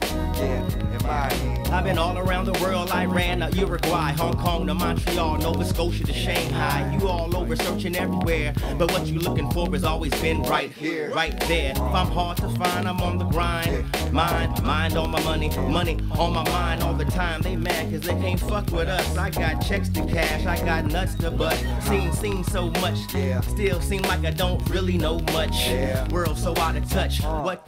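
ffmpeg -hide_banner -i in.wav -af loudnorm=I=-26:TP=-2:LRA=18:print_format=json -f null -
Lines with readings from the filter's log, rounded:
"input_i" : "-23.9",
"input_tp" : "-7.1",
"input_lra" : "1.0",
"input_thresh" : "-33.9",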